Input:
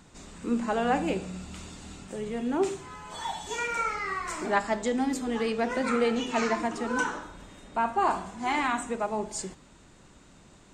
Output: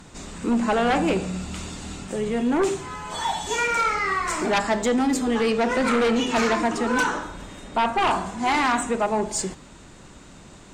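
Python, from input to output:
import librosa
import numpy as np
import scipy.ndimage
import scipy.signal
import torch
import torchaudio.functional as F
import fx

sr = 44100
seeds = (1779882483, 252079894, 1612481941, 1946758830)

y = fx.fold_sine(x, sr, drive_db=8, ceiling_db=-13.5)
y = y * librosa.db_to_amplitude(-3.0)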